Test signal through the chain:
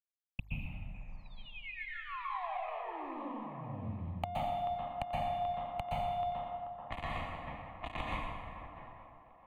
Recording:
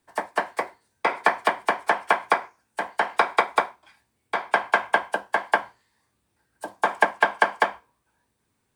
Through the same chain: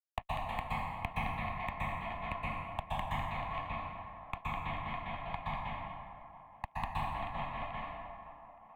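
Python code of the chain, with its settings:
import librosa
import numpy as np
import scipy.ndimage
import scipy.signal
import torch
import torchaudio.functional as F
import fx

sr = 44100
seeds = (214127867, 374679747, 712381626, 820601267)

y = fx.lower_of_two(x, sr, delay_ms=2.8)
y = fx.fuzz(y, sr, gain_db=24.0, gate_db=-32.0)
y = fx.gate_flip(y, sr, shuts_db=-22.0, range_db=-34)
y = scipy.signal.sosfilt(scipy.signal.butter(2, 1900.0, 'lowpass', fs=sr, output='sos'), y)
y = fx.echo_thinned(y, sr, ms=435, feedback_pct=49, hz=260.0, wet_db=-14.5)
y = fx.env_lowpass(y, sr, base_hz=790.0, full_db=-48.0)
y = np.clip(y, -10.0 ** (-29.0 / 20.0), 10.0 ** (-29.0 / 20.0))
y = fx.fixed_phaser(y, sr, hz=1500.0, stages=6)
y = fx.rev_plate(y, sr, seeds[0], rt60_s=1.4, hf_ratio=0.65, predelay_ms=110, drr_db=-7.0)
y = fx.band_squash(y, sr, depth_pct=40)
y = F.gain(torch.from_numpy(y), 10.0).numpy()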